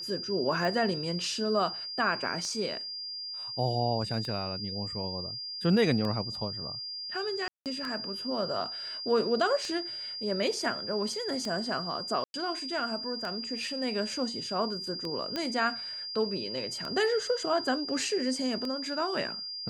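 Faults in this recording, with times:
tick 33 1/3 rpm -22 dBFS
tone 4800 Hz -36 dBFS
7.48–7.66 gap 0.178 s
12.24–12.34 gap 0.101 s
15.36 pop -18 dBFS

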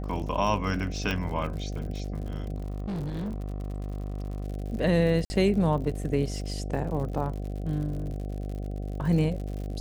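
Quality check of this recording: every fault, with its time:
buzz 50 Hz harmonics 15 -33 dBFS
crackle 77/s -36 dBFS
1.11 pop -15 dBFS
2.56–4.44 clipped -29 dBFS
5.25–5.3 gap 50 ms

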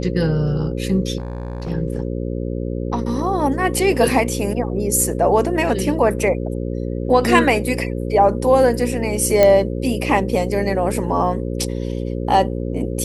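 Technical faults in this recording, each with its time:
buzz 60 Hz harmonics 9 -24 dBFS
1.18–1.71 clipped -22.5 dBFS
9.43 pop -2 dBFS

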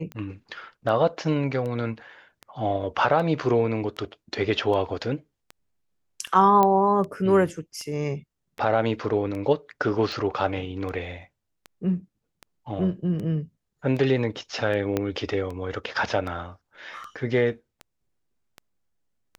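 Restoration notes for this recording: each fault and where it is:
tick 78 rpm -23 dBFS
6.63 pop -9 dBFS
14.97 pop -11 dBFS

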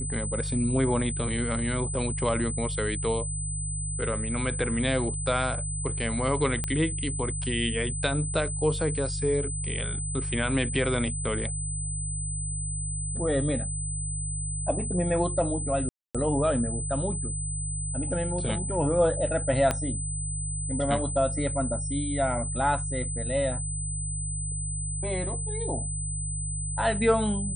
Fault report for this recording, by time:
hum 50 Hz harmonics 3 -33 dBFS
tone 8100 Hz -33 dBFS
6.64 pop -14 dBFS
15.89–16.15 gap 0.256 s
19.71 pop -11 dBFS

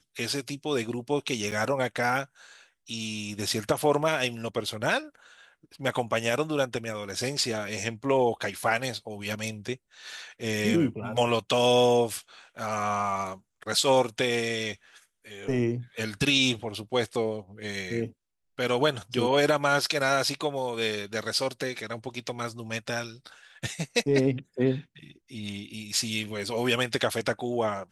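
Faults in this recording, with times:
1.51–1.52 gap 7.2 ms

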